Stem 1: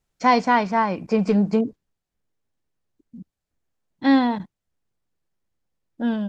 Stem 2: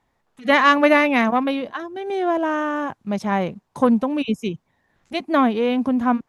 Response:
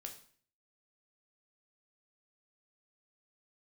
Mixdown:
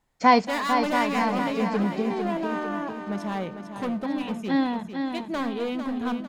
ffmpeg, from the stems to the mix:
-filter_complex "[0:a]volume=0dB,asplit=2[link_01][link_02];[link_02]volume=-7dB[link_03];[1:a]volume=18.5dB,asoftclip=hard,volume=-18.5dB,volume=-10dB,asplit=4[link_04][link_05][link_06][link_07];[link_05]volume=-4dB[link_08];[link_06]volume=-6dB[link_09];[link_07]apad=whole_len=277215[link_10];[link_01][link_10]sidechaincompress=threshold=-48dB:ratio=8:attack=5.1:release=1230[link_11];[2:a]atrim=start_sample=2205[link_12];[link_08][link_12]afir=irnorm=-1:irlink=0[link_13];[link_03][link_09]amix=inputs=2:normalize=0,aecho=0:1:450|900|1350|1800|2250|2700|3150:1|0.5|0.25|0.125|0.0625|0.0312|0.0156[link_14];[link_11][link_04][link_13][link_14]amix=inputs=4:normalize=0,bandreject=frequency=5800:width=19"

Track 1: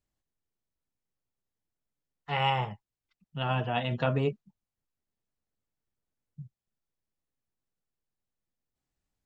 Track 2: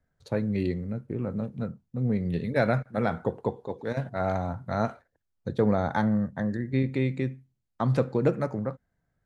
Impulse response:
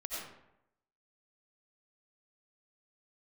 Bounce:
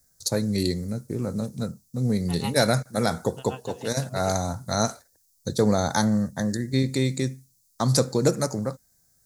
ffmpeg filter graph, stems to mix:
-filter_complex "[0:a]aeval=exprs='val(0)*pow(10,-24*(0.5-0.5*cos(2*PI*6.5*n/s))/20)':channel_layout=same,volume=-5dB[link_01];[1:a]aexciter=amount=13.5:drive=7.4:freq=4400,volume=2.5dB[link_02];[link_01][link_02]amix=inputs=2:normalize=0,equalizer=frequency=5400:width_type=o:width=0.77:gain=2.5"

